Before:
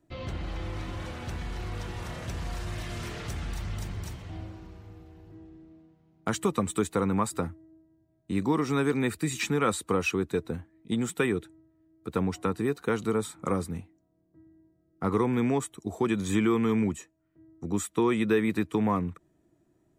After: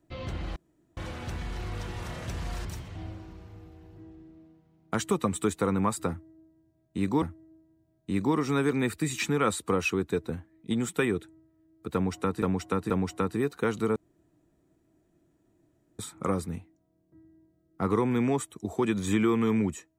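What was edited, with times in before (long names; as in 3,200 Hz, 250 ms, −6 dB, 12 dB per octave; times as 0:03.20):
0:00.56–0:00.97: fill with room tone
0:02.65–0:03.99: remove
0:07.43–0:08.56: repeat, 2 plays
0:12.15–0:12.63: repeat, 3 plays
0:13.21: splice in room tone 2.03 s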